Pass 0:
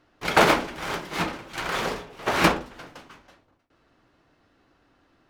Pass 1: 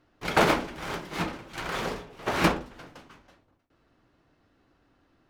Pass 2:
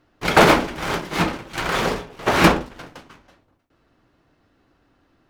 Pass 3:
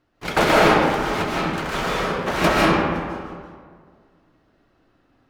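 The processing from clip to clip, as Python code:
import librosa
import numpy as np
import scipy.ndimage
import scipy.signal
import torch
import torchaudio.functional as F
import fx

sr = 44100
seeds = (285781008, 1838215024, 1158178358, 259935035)

y1 = fx.low_shelf(x, sr, hz=350.0, db=5.0)
y1 = y1 * 10.0 ** (-5.0 / 20.0)
y2 = fx.leveller(y1, sr, passes=1)
y2 = y2 * 10.0 ** (6.0 / 20.0)
y3 = fx.rev_freeverb(y2, sr, rt60_s=1.9, hf_ratio=0.5, predelay_ms=110, drr_db=-5.5)
y3 = y3 * 10.0 ** (-6.5 / 20.0)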